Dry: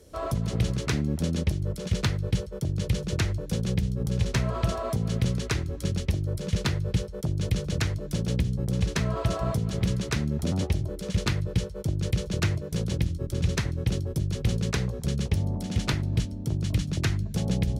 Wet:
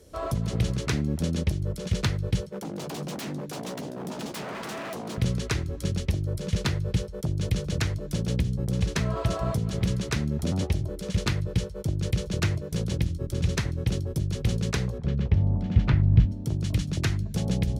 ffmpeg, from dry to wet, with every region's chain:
-filter_complex "[0:a]asettb=1/sr,asplit=3[a][b][c];[a]atrim=end=2.464[d];[b]atrim=start=2.46:end=5.18,asetpts=PTS-STARTPTS,afade=t=in:d=0.004:c=qsin,afade=t=out:st=2.716:d=0.004:c=qsin,aeval=exprs='0.0282*(abs(mod(val(0)/0.0282+3,4)-2)-1)':c=same,highpass=f=180:t=q:w=2.2,asplit=2[e][f];[f]adelay=14,volume=-13.5dB[g];[e][g]amix=inputs=2:normalize=0,atrim=end_sample=119952[h];[c]atrim=start=5.176[i];[d][h]acrossfade=d=0.004:c1=hsin:c2=qsin[j];[j][i]acrossfade=d=0.004:c1=qsin:c2=hsin,asettb=1/sr,asplit=3[k][l][m];[k]atrim=end=14.984[n];[l]atrim=start=14.98:end=16.32,asetpts=PTS-STARTPTS,afade=t=in:d=0.004:c=qsin,afade=t=out:st=1.336:d=0.004:c=qsin,lowpass=2.3k,asubboost=boost=6.5:cutoff=210[o];[m]atrim=start=16.316[p];[n][o]acrossfade=d=0.004:c1=hsin:c2=qsin[q];[q][p]acrossfade=d=0.004:c1=qsin:c2=hsin"

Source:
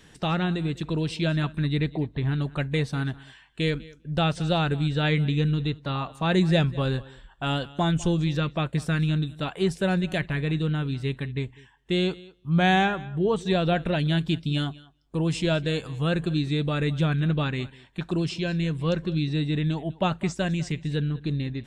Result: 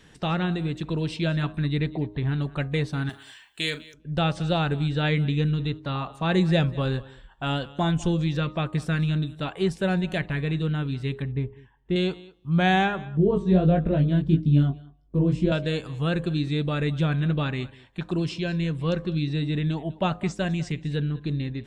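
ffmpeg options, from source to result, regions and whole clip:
-filter_complex "[0:a]asettb=1/sr,asplit=3[a][b][c];[a]atrim=end=3.094[d];[b]atrim=start=3.09:end=3.94,asetpts=PTS-STARTPTS,afade=t=in:d=0.004:c=qsin,afade=t=out:st=0.846:d=0.004:c=qsin,aemphasis=mode=production:type=riaa,bandreject=f=490:w=10,asplit=2[e][f];[f]adelay=40,volume=-13dB[g];[e][g]amix=inputs=2:normalize=0,atrim=end_sample=37485[h];[c]atrim=start=3.936[i];[d][h]acrossfade=d=0.004:c1=hsin:c2=qsin[j];[j][i]acrossfade=d=0.004:c1=qsin:c2=hsin,asettb=1/sr,asplit=3[k][l][m];[k]atrim=end=11.224[n];[l]atrim=start=11.22:end=11.96,asetpts=PTS-STARTPTS,afade=t=in:d=0.004:c=qsin,afade=t=out:st=0.736:d=0.004:c=qsin,lowpass=f=1.1k:p=1,lowshelf=f=150:g=5[o];[m]atrim=start=11.956[p];[n][o]acrossfade=d=0.004:c1=hsin:c2=qsin[q];[q][p]acrossfade=d=0.004:c1=qsin:c2=hsin,asettb=1/sr,asplit=3[r][s][t];[r]atrim=end=13.174[u];[s]atrim=start=13.17:end=15.52,asetpts=PTS-STARTPTS,afade=t=in:d=0.004:c=qsin,afade=t=out:st=2.346:d=0.004:c=qsin,flanger=delay=18.5:depth=4.1:speed=1.6,tiltshelf=f=840:g=10,bandreject=f=820:w=7.6[v];[t]atrim=start=15.516[w];[u][v]acrossfade=d=0.004:c1=hsin:c2=qsin[x];[x][w]acrossfade=d=0.004:c1=qsin:c2=hsin,highshelf=f=6k:g=-5.5,bandreject=f=103.1:t=h:w=4,bandreject=f=206.2:t=h:w=4,bandreject=f=309.3:t=h:w=4,bandreject=f=412.4:t=h:w=4,bandreject=f=515.5:t=h:w=4,bandreject=f=618.6:t=h:w=4,bandreject=f=721.7:t=h:w=4,bandreject=f=824.8:t=h:w=4,bandreject=f=927.9:t=h:w=4,bandreject=f=1.031k:t=h:w=4,bandreject=f=1.1341k:t=h:w=4,bandreject=f=1.2372k:t=h:w=4"

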